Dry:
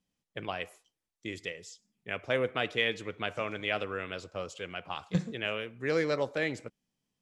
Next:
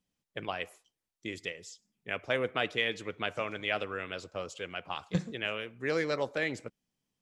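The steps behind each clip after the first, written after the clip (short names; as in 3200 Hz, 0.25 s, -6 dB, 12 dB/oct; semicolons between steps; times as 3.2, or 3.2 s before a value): harmonic-percussive split percussive +4 dB; gain -3 dB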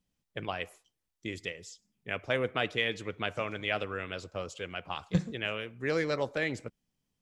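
low shelf 110 Hz +10 dB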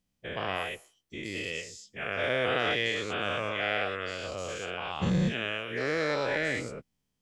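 spectral dilation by 0.24 s; gain -4.5 dB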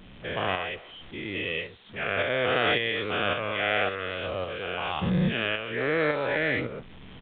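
zero-crossing step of -40.5 dBFS; tremolo saw up 1.8 Hz, depth 45%; downsampling 8000 Hz; gain +4.5 dB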